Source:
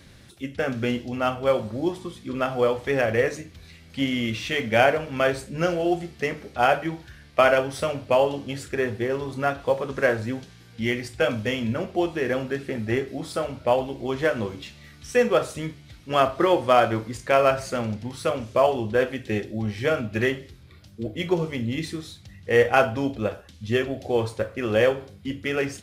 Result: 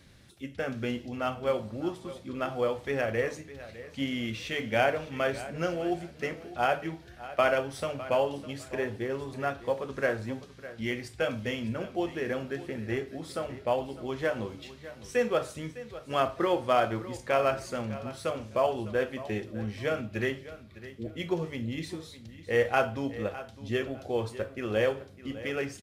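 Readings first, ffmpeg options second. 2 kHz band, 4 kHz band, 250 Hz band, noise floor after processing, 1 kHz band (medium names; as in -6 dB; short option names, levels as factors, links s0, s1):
-7.0 dB, -7.0 dB, -7.0 dB, -51 dBFS, -7.0 dB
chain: -af "aecho=1:1:606|1212:0.168|0.0403,volume=0.447"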